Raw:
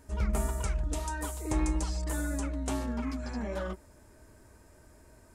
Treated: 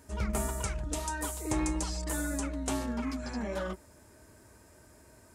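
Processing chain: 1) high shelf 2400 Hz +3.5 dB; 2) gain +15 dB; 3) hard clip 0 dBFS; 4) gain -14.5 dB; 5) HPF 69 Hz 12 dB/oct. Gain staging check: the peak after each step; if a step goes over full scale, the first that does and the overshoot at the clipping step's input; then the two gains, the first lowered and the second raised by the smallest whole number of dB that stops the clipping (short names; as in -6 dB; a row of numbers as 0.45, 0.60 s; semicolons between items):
-18.5, -3.5, -3.5, -18.0, -16.5 dBFS; no overload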